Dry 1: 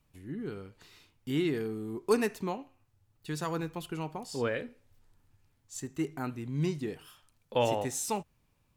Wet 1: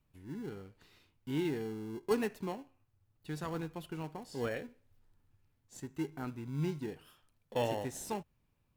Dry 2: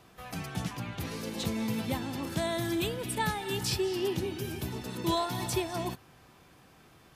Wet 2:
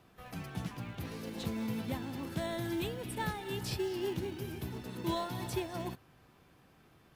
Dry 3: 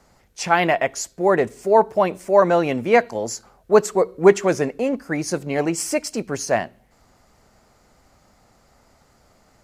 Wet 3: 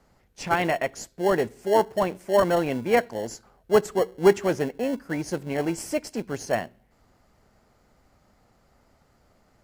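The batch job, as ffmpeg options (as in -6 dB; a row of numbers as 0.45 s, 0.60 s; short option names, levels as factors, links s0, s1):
-filter_complex "[0:a]equalizer=f=7100:t=o:w=1.4:g=-5,asplit=2[s0][s1];[s1]acrusher=samples=36:mix=1:aa=0.000001,volume=0.299[s2];[s0][s2]amix=inputs=2:normalize=0,volume=0.501"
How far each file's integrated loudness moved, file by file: -5.0 LU, -5.5 LU, -5.0 LU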